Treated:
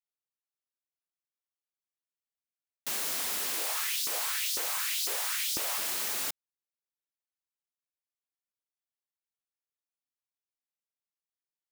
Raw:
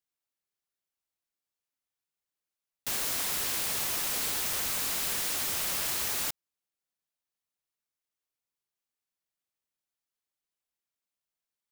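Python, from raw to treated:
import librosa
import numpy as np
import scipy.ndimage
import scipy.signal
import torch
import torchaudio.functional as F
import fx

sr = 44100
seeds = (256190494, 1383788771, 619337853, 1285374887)

y = scipy.signal.sosfilt(scipy.signal.butter(2, 220.0, 'highpass', fs=sr, output='sos'), x)
y = fx.leveller(y, sr, passes=2)
y = fx.filter_lfo_highpass(y, sr, shape='saw_up', hz=2.0, low_hz=340.0, high_hz=5300.0, q=2.3, at=(3.57, 5.78))
y = y * 10.0 ** (-7.0 / 20.0)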